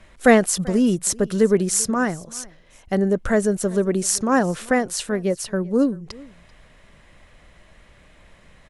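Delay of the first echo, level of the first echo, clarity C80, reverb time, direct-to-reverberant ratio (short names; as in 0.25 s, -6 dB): 0.388 s, -23.0 dB, none, none, none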